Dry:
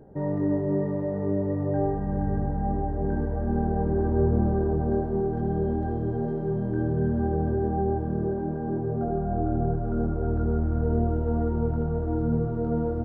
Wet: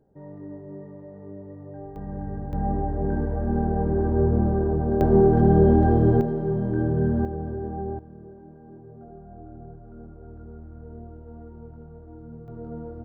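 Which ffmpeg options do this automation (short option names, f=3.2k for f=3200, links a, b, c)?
-af "asetnsamples=n=441:p=0,asendcmd='1.96 volume volume -6dB;2.53 volume volume 1.5dB;5.01 volume volume 10dB;6.21 volume volume 2.5dB;7.25 volume volume -5.5dB;7.99 volume volume -17dB;12.48 volume volume -10dB',volume=-14dB"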